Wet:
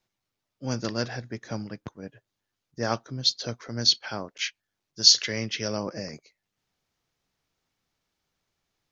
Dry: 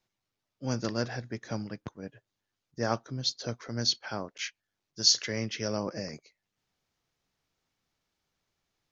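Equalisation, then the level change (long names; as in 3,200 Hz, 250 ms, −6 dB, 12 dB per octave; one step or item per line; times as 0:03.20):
dynamic equaliser 3,400 Hz, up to +7 dB, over −43 dBFS, Q 0.91
+1.5 dB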